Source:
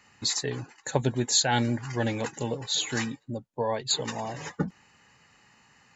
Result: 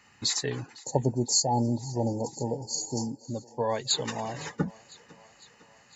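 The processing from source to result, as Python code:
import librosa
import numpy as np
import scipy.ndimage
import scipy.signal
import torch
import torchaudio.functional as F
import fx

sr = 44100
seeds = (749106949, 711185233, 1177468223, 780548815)

y = fx.spec_erase(x, sr, start_s=0.8, length_s=2.45, low_hz=980.0, high_hz=4300.0)
y = fx.echo_thinned(y, sr, ms=505, feedback_pct=68, hz=280.0, wet_db=-21.5)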